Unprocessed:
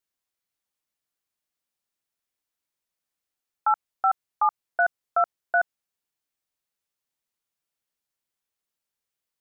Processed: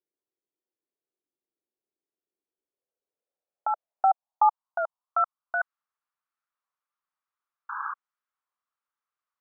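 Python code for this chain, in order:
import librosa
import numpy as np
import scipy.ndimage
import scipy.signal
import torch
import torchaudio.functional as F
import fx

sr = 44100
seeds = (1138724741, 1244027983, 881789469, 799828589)

p1 = fx.dynamic_eq(x, sr, hz=780.0, q=1.7, threshold_db=-31.0, ratio=4.0, max_db=-4)
p2 = fx.level_steps(p1, sr, step_db=20)
p3 = p1 + (p2 * 10.0 ** (3.0 / 20.0))
p4 = fx.fixed_phaser(p3, sr, hz=830.0, stages=4, at=(4.05, 5.6), fade=0.02)
p5 = fx.spec_paint(p4, sr, seeds[0], shape='noise', start_s=7.69, length_s=0.25, low_hz=810.0, high_hz=1700.0, level_db=-36.0)
p6 = fx.filter_sweep_bandpass(p5, sr, from_hz=370.0, to_hz=1200.0, start_s=2.47, end_s=5.24, q=3.9)
p7 = fx.record_warp(p6, sr, rpm=33.33, depth_cents=160.0)
y = p7 * 10.0 ** (7.0 / 20.0)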